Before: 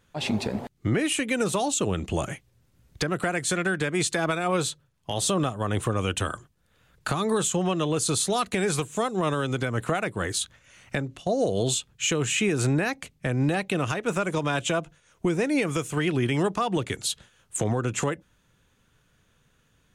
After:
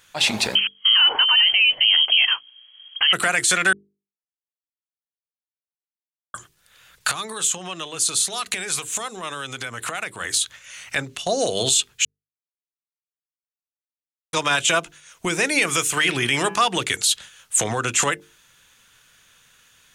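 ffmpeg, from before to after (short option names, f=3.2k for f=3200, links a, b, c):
-filter_complex "[0:a]asettb=1/sr,asplit=3[a][b][c];[a]atrim=end=0.554[d];[b]atrim=start=0.55:end=3.13,asetpts=PTS-STARTPTS,afade=t=in:d=0.004:c=qsin,afade=t=out:st=2.576:d=0.004:c=qsin,lowpass=f=2.8k:t=q:w=0.5098,lowpass=f=2.8k:t=q:w=0.6013,lowpass=f=2.8k:t=q:w=0.9,lowpass=f=2.8k:t=q:w=2.563,afreqshift=-3300[e];[c]atrim=start=3.126[f];[d][e]acrossfade=d=0.004:c1=hsin:c2=qsin[g];[g][f]acrossfade=d=0.004:c1=qsin:c2=hsin,asettb=1/sr,asplit=3[h][i][j];[h]atrim=end=7.114[k];[i]atrim=start=7.11:end=10.96,asetpts=PTS-STARTPTS,afade=t=in:d=0.004:c=qsin,afade=t=out:st=3.846:d=0.004:c=qsin,acompressor=threshold=-33dB:ratio=5:attack=3.2:release=140:knee=1:detection=peak[l];[j]atrim=start=10.956[m];[k][l]acrossfade=d=0.004:c1=hsin:c2=qsin[n];[n][m]acrossfade=d=0.004:c1=qsin:c2=hsin,asettb=1/sr,asplit=3[o][p][q];[o]atrim=end=15.984[r];[p]atrim=start=15.98:end=16.57,asetpts=PTS-STARTPTS,afade=t=in:d=0.004:c=qsin,afade=t=out:st=0.586:d=0.004:c=qsin,bandreject=f=168.5:t=h:w=4,bandreject=f=337:t=h:w=4,bandreject=f=505.5:t=h:w=4,bandreject=f=674:t=h:w=4,bandreject=f=842.5:t=h:w=4,bandreject=f=1.011k:t=h:w=4,bandreject=f=1.1795k:t=h:w=4,bandreject=f=1.348k:t=h:w=4,bandreject=f=1.5165k:t=h:w=4,bandreject=f=1.685k:t=h:w=4,bandreject=f=1.8535k:t=h:w=4,bandreject=f=2.022k:t=h:w=4,bandreject=f=2.1905k:t=h:w=4,bandreject=f=2.359k:t=h:w=4,bandreject=f=2.5275k:t=h:w=4,bandreject=f=2.696k:t=h:w=4,bandreject=f=2.8645k:t=h:w=4,bandreject=f=3.033k:t=h:w=4[s];[q]atrim=start=16.566[t];[r][s]acrossfade=d=0.004:c1=hsin:c2=qsin[u];[u][t]acrossfade=d=0.004:c1=qsin:c2=hsin,asplit=5[v][w][x][y][z];[v]atrim=end=3.73,asetpts=PTS-STARTPTS,afade=t=out:st=3.726:d=0.004:c=hsin[aa];[w]atrim=start=3.73:end=6.34,asetpts=PTS-STARTPTS,volume=0[ab];[x]atrim=start=6.34:end=12.05,asetpts=PTS-STARTPTS,afade=t=in:d=0.004:c=hsin,afade=t=out:st=5.706:d=0.004:c=hsin[ac];[y]atrim=start=12.05:end=14.33,asetpts=PTS-STARTPTS,volume=0[ad];[z]atrim=start=14.33,asetpts=PTS-STARTPTS,afade=t=in:d=0.004:c=hsin[ae];[aa][ab][ac][ad][ae]concat=n=5:v=0:a=1,tiltshelf=f=870:g=-10,bandreject=f=50:t=h:w=6,bandreject=f=100:t=h:w=6,bandreject=f=150:t=h:w=6,bandreject=f=200:t=h:w=6,bandreject=f=250:t=h:w=6,bandreject=f=300:t=h:w=6,bandreject=f=350:t=h:w=6,bandreject=f=400:t=h:w=6,bandreject=f=450:t=h:w=6,alimiter=limit=-15dB:level=0:latency=1:release=11,volume=6.5dB"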